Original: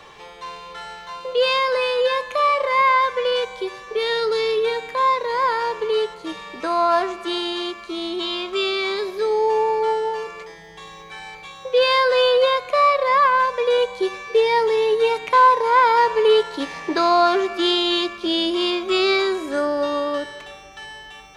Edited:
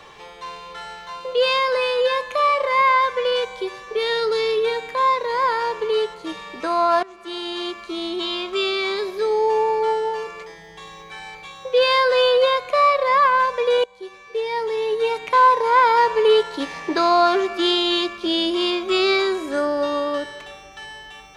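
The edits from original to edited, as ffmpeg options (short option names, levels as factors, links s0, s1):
-filter_complex "[0:a]asplit=3[s0][s1][s2];[s0]atrim=end=7.03,asetpts=PTS-STARTPTS,afade=t=out:st=7.026:d=0.004:c=hsin:silence=0.105925[s3];[s1]atrim=start=7.03:end=13.84,asetpts=PTS-STARTPTS,afade=t=in:d=0.69:silence=0.105925,afade=t=out:st=6.806:d=0.004:c=hsin:silence=0.112202[s4];[s2]atrim=start=13.84,asetpts=PTS-STARTPTS,afade=t=in:d=1.75:silence=0.112202[s5];[s3][s4][s5]concat=n=3:v=0:a=1"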